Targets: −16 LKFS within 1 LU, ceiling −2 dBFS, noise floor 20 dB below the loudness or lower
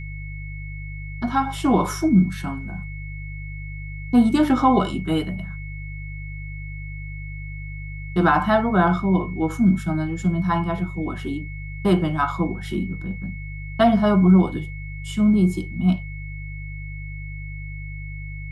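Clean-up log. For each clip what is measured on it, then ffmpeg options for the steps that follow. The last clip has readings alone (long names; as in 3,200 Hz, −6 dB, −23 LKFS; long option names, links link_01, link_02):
mains hum 50 Hz; hum harmonics up to 150 Hz; level of the hum −31 dBFS; interfering tone 2,200 Hz; level of the tone −39 dBFS; integrated loudness −21.0 LKFS; sample peak −5.0 dBFS; target loudness −16.0 LKFS
→ -af "bandreject=frequency=50:width_type=h:width=4,bandreject=frequency=100:width_type=h:width=4,bandreject=frequency=150:width_type=h:width=4"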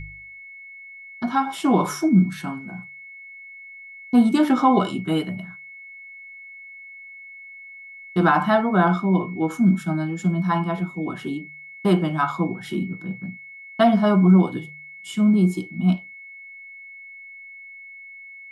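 mains hum none found; interfering tone 2,200 Hz; level of the tone −39 dBFS
→ -af "bandreject=frequency=2200:width=30"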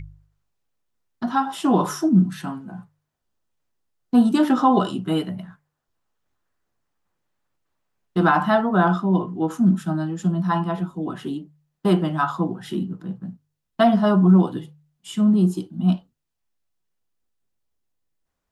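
interfering tone none found; integrated loudness −21.0 LKFS; sample peak −5.5 dBFS; target loudness −16.0 LKFS
→ -af "volume=5dB,alimiter=limit=-2dB:level=0:latency=1"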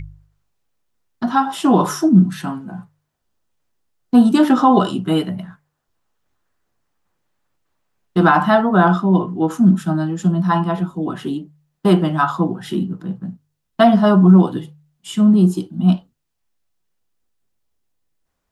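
integrated loudness −16.0 LKFS; sample peak −2.0 dBFS; background noise floor −74 dBFS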